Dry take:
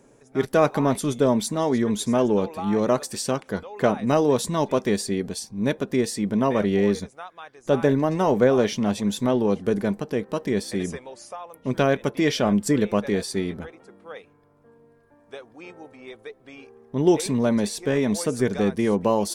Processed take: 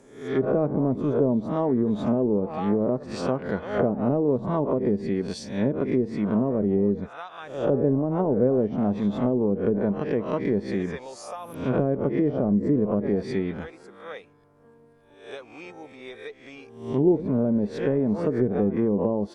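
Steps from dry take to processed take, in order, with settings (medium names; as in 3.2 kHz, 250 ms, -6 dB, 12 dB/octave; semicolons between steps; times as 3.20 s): reverse spectral sustain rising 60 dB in 0.56 s; low-pass that closes with the level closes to 450 Hz, closed at -16 dBFS; trim -1 dB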